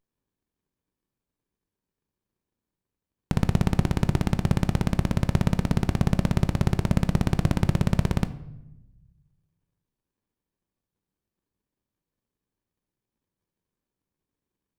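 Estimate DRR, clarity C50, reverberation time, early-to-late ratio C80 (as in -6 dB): 11.0 dB, 15.5 dB, 0.90 s, 17.5 dB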